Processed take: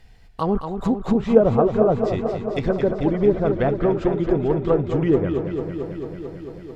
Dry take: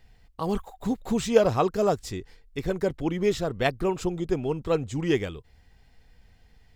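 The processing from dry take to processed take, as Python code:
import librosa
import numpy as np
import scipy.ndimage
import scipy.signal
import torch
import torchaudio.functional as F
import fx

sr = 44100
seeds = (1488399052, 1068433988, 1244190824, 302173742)

y = fx.dynamic_eq(x, sr, hz=1400.0, q=2.9, threshold_db=-45.0, ratio=4.0, max_db=6)
y = fx.env_lowpass_down(y, sr, base_hz=650.0, full_db=-20.5)
y = fx.echo_warbled(y, sr, ms=222, feedback_pct=77, rate_hz=2.8, cents=71, wet_db=-8.0)
y = F.gain(torch.from_numpy(y), 6.0).numpy()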